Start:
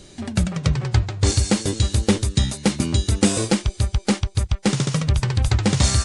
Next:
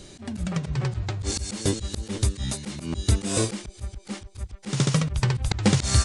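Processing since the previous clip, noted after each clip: slow attack 156 ms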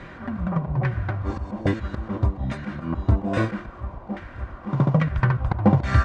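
added noise pink -44 dBFS; comb of notches 430 Hz; LFO low-pass saw down 1.2 Hz 770–1900 Hz; trim +3 dB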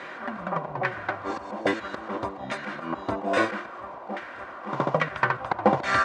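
high-pass 460 Hz 12 dB/octave; trim +5 dB

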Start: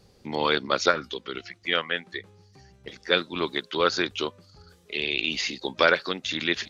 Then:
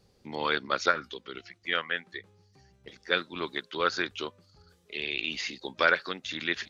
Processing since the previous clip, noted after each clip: dynamic bell 1.6 kHz, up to +6 dB, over -36 dBFS, Q 1.3; trim -7 dB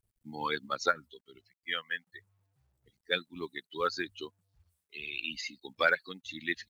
expander on every frequency bin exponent 2; companded quantiser 8-bit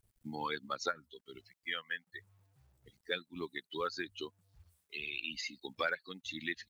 compression 2:1, threshold -48 dBFS, peak gain reduction 15 dB; trim +5.5 dB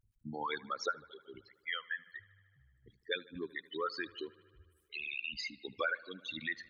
resonances exaggerated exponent 2; bucket-brigade echo 76 ms, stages 2048, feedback 74%, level -22.5 dB

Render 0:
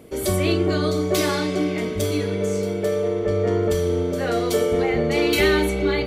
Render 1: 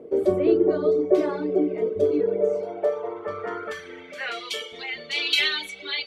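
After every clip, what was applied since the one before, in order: band-pass sweep 440 Hz -> 3.4 kHz, 2.23–4.75 s; reverb removal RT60 1.4 s; trim +8 dB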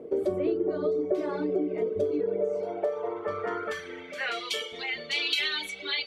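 compression 4:1, threshold -25 dBFS, peak gain reduction 10.5 dB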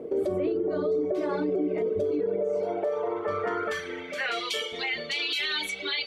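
peak limiter -24.5 dBFS, peak gain reduction 10 dB; trim +4.5 dB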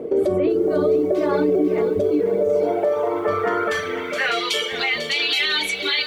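bit-crushed delay 497 ms, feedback 35%, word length 9-bit, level -11 dB; trim +8 dB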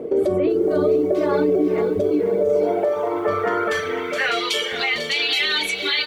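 delay 454 ms -15.5 dB

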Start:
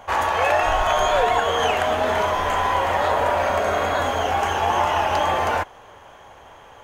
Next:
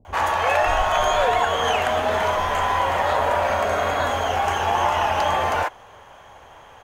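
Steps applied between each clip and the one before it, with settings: bands offset in time lows, highs 50 ms, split 330 Hz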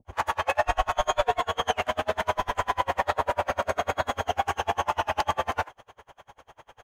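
logarithmic tremolo 10 Hz, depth 35 dB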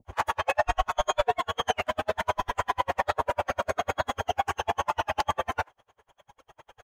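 reverb removal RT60 2 s

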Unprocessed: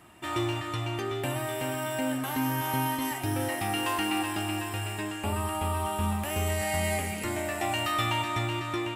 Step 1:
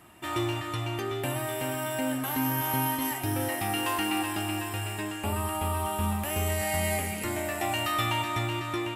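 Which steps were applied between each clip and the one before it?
peaking EQ 12 kHz +7 dB 0.31 oct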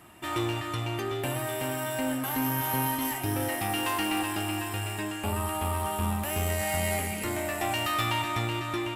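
single-diode clipper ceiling -25 dBFS; trim +1.5 dB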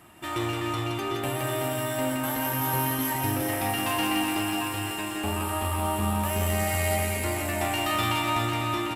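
reverse bouncing-ball echo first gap 170 ms, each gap 1.4×, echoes 5

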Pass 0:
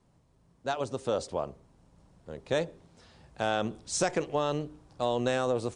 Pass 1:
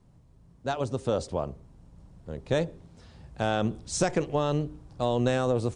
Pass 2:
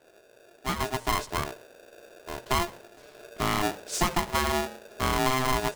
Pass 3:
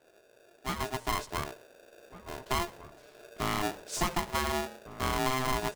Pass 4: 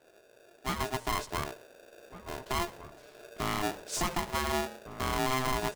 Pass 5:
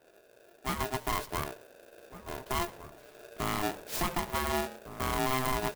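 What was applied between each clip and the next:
bass shelf 220 Hz +11.5 dB
polarity switched at an audio rate 520 Hz
echo from a far wall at 250 m, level -14 dB; trim -4.5 dB
peak limiter -22 dBFS, peak gain reduction 5.5 dB; trim +1.5 dB
sampling jitter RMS 0.038 ms

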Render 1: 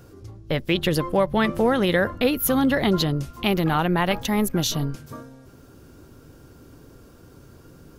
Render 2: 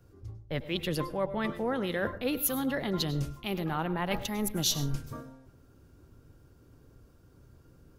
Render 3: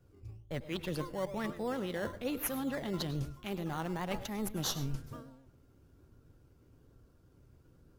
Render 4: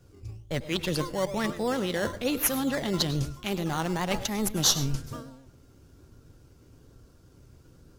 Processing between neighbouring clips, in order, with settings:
reverse; compression 4:1, threshold -30 dBFS, peak gain reduction 13 dB; reverse; reverberation RT60 0.25 s, pre-delay 92 ms, DRR 12.5 dB; three bands expanded up and down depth 70%
vibrato 8 Hz 54 cents; in parallel at -7 dB: decimation with a swept rate 14×, swing 60% 1.1 Hz; on the sum: trim -8 dB
peaking EQ 6.1 kHz +7.5 dB 1.8 oct; trim +7.5 dB

